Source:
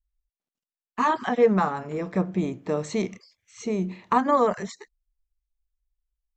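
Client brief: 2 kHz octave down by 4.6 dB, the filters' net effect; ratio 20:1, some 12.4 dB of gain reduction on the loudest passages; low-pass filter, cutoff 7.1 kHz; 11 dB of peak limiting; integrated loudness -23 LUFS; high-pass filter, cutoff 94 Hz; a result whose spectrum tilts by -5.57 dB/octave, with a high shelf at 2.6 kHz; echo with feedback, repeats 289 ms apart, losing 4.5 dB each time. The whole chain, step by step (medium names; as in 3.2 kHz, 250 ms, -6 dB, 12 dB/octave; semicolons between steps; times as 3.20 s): high-pass 94 Hz; low-pass 7.1 kHz; peaking EQ 2 kHz -7.5 dB; treble shelf 2.6 kHz +3.5 dB; compression 20:1, threshold -25 dBFS; peak limiter -25 dBFS; feedback delay 289 ms, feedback 60%, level -4.5 dB; trim +11 dB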